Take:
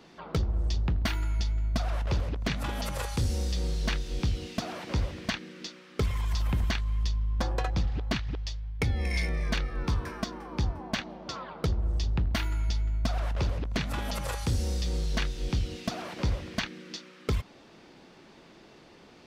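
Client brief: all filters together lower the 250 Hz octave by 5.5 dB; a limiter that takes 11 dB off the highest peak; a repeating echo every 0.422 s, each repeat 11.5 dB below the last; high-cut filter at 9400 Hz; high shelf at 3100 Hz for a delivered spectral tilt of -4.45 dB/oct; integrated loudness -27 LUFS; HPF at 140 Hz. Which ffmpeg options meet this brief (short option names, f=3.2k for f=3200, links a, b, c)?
-af "highpass=140,lowpass=9.4k,equalizer=f=250:t=o:g=-6.5,highshelf=f=3.1k:g=-3.5,alimiter=level_in=3.5dB:limit=-24dB:level=0:latency=1,volume=-3.5dB,aecho=1:1:422|844|1266:0.266|0.0718|0.0194,volume=13.5dB"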